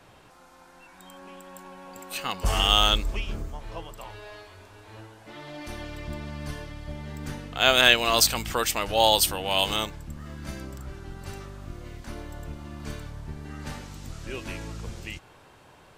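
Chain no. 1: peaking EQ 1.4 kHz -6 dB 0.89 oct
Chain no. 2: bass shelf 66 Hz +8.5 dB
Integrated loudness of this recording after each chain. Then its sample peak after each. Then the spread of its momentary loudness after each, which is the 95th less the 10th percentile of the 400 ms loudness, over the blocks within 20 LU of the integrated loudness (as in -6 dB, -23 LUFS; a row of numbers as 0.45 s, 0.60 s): -24.5 LUFS, -24.5 LUFS; -3.0 dBFS, -2.0 dBFS; 21 LU, 22 LU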